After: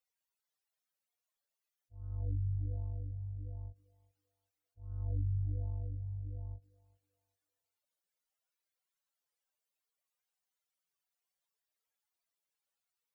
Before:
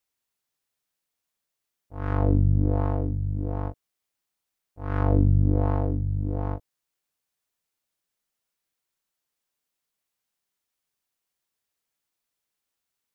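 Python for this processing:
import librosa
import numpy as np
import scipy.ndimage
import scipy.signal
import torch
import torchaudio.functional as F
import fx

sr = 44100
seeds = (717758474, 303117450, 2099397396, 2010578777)

y = fx.spec_expand(x, sr, power=2.9)
y = fx.low_shelf_res(y, sr, hz=400.0, db=-7.0, q=1.5)
y = fx.echo_thinned(y, sr, ms=390, feedback_pct=35, hz=320.0, wet_db=-16)
y = y * 10.0 ** (-7.0 / 20.0)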